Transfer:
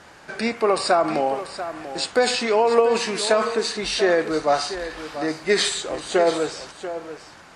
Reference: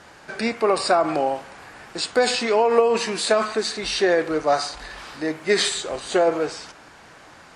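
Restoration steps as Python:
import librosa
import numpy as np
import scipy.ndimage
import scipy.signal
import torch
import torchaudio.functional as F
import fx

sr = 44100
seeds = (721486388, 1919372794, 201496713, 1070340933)

y = fx.fix_echo_inverse(x, sr, delay_ms=688, level_db=-12.0)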